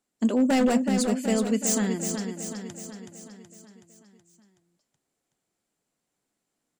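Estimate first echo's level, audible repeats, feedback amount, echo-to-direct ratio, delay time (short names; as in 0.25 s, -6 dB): -6.5 dB, 6, 56%, -5.0 dB, 0.374 s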